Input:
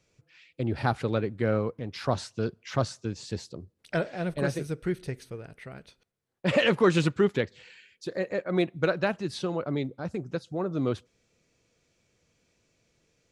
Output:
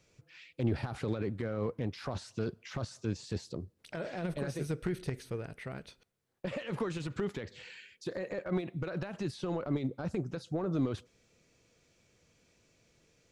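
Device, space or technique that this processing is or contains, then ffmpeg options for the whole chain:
de-esser from a sidechain: -filter_complex "[0:a]asplit=2[link_01][link_02];[link_02]highpass=frequency=4300:poles=1,apad=whole_len=587235[link_03];[link_01][link_03]sidechaincompress=threshold=-48dB:ratio=16:attack=0.56:release=37,volume=2dB"

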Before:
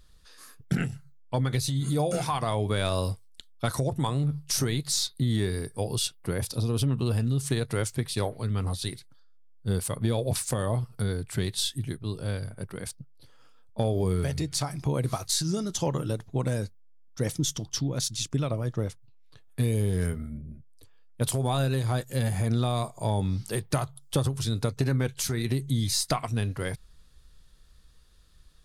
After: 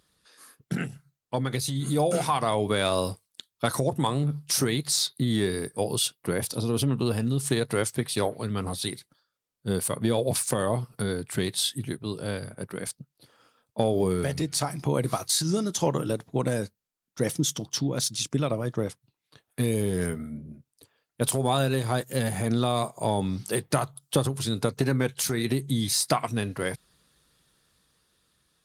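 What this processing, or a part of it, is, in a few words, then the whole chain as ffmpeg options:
video call: -af "highpass=170,dynaudnorm=framelen=450:gausssize=7:maxgain=4.5dB" -ar 48000 -c:a libopus -b:a 32k

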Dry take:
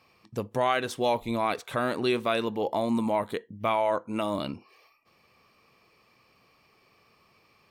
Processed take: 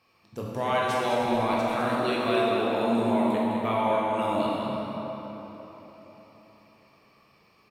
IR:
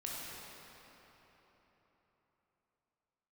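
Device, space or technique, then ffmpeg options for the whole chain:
cave: -filter_complex "[0:a]aecho=1:1:206:0.376[link_01];[1:a]atrim=start_sample=2205[link_02];[link_01][link_02]afir=irnorm=-1:irlink=0"

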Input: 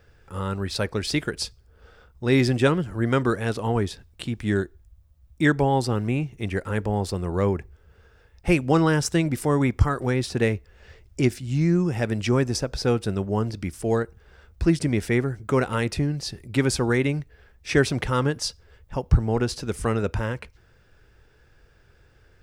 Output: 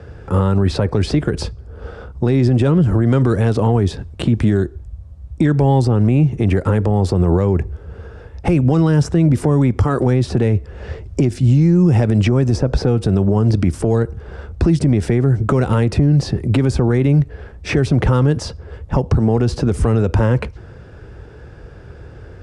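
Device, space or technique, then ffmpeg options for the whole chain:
mastering chain: -filter_complex "[0:a]highpass=53,equalizer=frequency=2000:width_type=o:width=0.77:gain=-2,acrossover=split=140|2600[link_01][link_02][link_03];[link_01]acompressor=threshold=-33dB:ratio=4[link_04];[link_02]acompressor=threshold=-30dB:ratio=4[link_05];[link_03]acompressor=threshold=-41dB:ratio=4[link_06];[link_04][link_05][link_06]amix=inputs=3:normalize=0,acompressor=threshold=-28dB:ratio=2,asoftclip=type=tanh:threshold=-19.5dB,tiltshelf=frequency=1400:gain=7.5,alimiter=level_in=21dB:limit=-1dB:release=50:level=0:latency=1,lowpass=frequency=10000:width=0.5412,lowpass=frequency=10000:width=1.3066,volume=-5.5dB"

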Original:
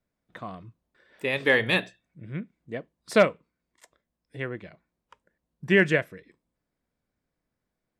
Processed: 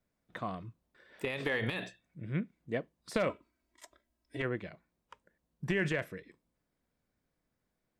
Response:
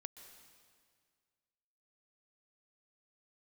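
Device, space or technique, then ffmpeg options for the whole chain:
de-esser from a sidechain: -filter_complex "[0:a]asplit=2[link_01][link_02];[link_02]highpass=4300,apad=whole_len=352553[link_03];[link_01][link_03]sidechaincompress=threshold=-43dB:ratio=8:attack=0.88:release=43,asettb=1/sr,asplit=3[link_04][link_05][link_06];[link_04]atrim=end=3.294[link_07];[link_05]atrim=start=3.29:end=4.42,asetpts=PTS-STARTPTS,afade=type=in:duration=0.004:curve=qsin,afade=type=out:start_time=1.126:duration=0.004:curve=qsin,aecho=1:1:3.1:0.81,atrim=end_sample=49833[link_08];[link_06]atrim=start=4.416[link_09];[link_07][link_08]acrossfade=duration=0.004:curve1=hsin:curve2=qsin[link_10];[link_10][link_09]acrossfade=duration=0.004:curve1=qsin:curve2=hsin"

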